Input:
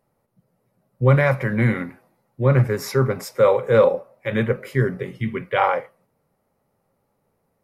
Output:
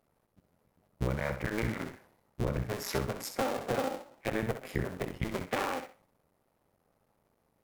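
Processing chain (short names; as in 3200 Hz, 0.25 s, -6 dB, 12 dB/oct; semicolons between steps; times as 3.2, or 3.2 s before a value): cycle switcher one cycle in 2, muted; 4.12–5.13 dynamic EQ 4600 Hz, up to -5 dB, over -43 dBFS, Q 0.72; compressor 10:1, threshold -27 dBFS, peak gain reduction 16 dB; on a send: thinning echo 64 ms, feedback 18%, level -8.5 dB; on the sum: gain -1 dB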